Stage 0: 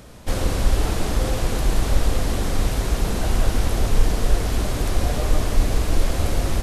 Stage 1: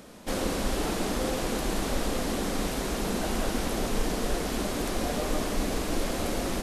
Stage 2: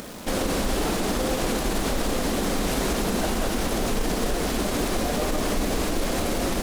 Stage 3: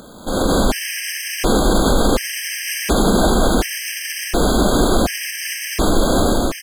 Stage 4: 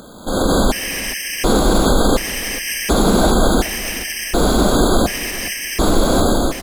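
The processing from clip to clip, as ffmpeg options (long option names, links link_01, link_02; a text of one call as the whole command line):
ffmpeg -i in.wav -af "lowshelf=frequency=150:width_type=q:width=1.5:gain=-10.5,volume=-3dB" out.wav
ffmpeg -i in.wav -af "alimiter=limit=-24dB:level=0:latency=1:release=73,acompressor=mode=upward:threshold=-44dB:ratio=2.5,acrusher=bits=9:dc=4:mix=0:aa=0.000001,volume=8.5dB" out.wav
ffmpeg -i in.wav -filter_complex "[0:a]dynaudnorm=framelen=100:gausssize=7:maxgain=12dB,asplit=2[link_01][link_02];[link_02]aecho=0:1:483:0.316[link_03];[link_01][link_03]amix=inputs=2:normalize=0,afftfilt=real='re*gt(sin(2*PI*0.69*pts/sr)*(1-2*mod(floor(b*sr/1024/1600),2)),0)':imag='im*gt(sin(2*PI*0.69*pts/sr)*(1-2*mod(floor(b*sr/1024/1600),2)),0)':win_size=1024:overlap=0.75,volume=-1dB" out.wav
ffmpeg -i in.wav -af "aecho=1:1:419|838:0.158|0.0333,volume=1dB" out.wav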